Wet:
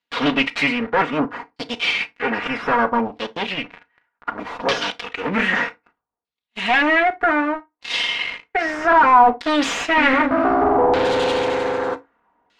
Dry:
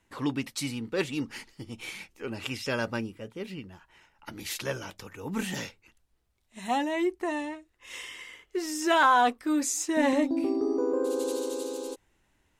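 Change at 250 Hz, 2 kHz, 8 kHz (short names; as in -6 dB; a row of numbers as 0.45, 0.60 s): +6.5, +14.0, -3.0 dB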